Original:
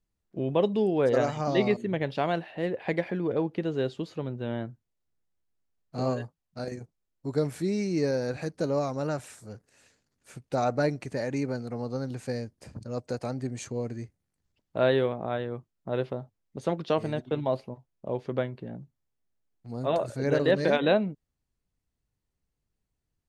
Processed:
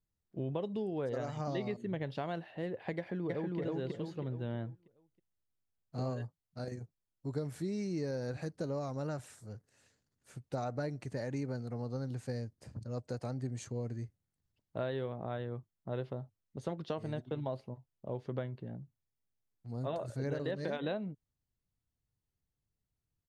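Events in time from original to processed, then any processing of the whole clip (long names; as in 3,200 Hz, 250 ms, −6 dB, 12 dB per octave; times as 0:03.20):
0:02.97–0:03.59: delay throw 320 ms, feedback 35%, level 0 dB
whole clip: parametric band 2,400 Hz −4.5 dB 0.21 octaves; downward compressor, threshold −26 dBFS; parametric band 110 Hz +6.5 dB 1.1 octaves; level −7.5 dB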